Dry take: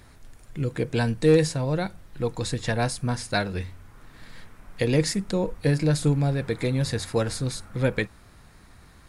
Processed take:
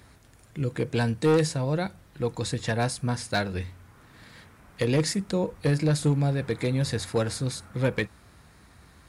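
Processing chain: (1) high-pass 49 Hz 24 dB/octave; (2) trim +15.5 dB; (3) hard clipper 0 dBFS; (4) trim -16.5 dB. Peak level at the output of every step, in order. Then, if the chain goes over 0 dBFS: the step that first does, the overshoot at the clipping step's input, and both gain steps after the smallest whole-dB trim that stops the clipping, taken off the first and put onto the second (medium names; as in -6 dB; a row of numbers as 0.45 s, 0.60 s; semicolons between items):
-9.0 dBFS, +6.5 dBFS, 0.0 dBFS, -16.5 dBFS; step 2, 6.5 dB; step 2 +8.5 dB, step 4 -9.5 dB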